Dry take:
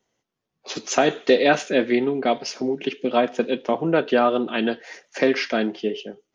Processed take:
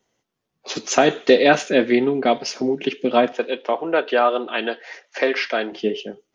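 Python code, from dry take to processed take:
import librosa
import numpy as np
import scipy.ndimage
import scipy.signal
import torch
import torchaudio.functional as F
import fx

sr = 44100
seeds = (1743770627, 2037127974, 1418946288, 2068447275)

y = fx.bandpass_edges(x, sr, low_hz=470.0, high_hz=4600.0, at=(3.32, 5.72))
y = y * 10.0 ** (3.0 / 20.0)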